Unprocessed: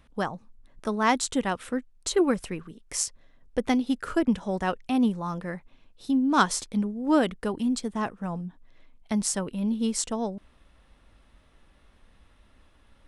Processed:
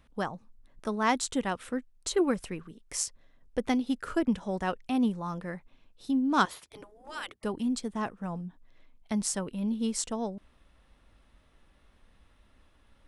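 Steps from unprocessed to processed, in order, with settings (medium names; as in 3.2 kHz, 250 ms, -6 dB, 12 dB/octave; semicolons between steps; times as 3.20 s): 6.45–7.44 s: spectral gate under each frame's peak -15 dB weak; trim -3.5 dB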